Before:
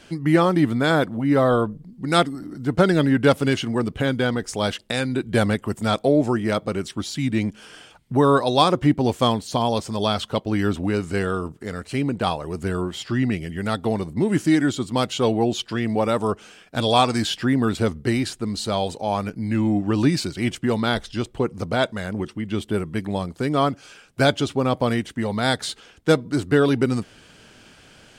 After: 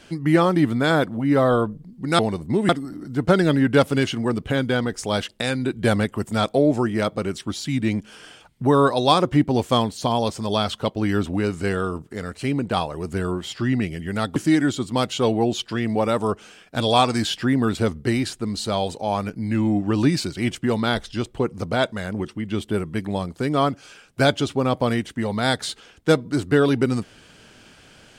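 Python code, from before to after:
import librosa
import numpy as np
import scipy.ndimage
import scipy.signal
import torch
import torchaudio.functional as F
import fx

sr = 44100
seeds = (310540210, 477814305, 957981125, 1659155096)

y = fx.edit(x, sr, fx.move(start_s=13.86, length_s=0.5, to_s=2.19), tone=tone)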